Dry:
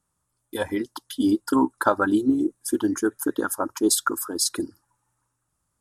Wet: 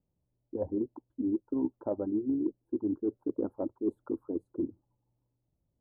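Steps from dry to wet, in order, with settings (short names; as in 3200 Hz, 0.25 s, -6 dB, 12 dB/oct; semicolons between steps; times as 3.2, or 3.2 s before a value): inverse Chebyshev low-pass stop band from 2100 Hz, stop band 60 dB; reverse; compressor 6:1, threshold -28 dBFS, peak gain reduction 12.5 dB; reverse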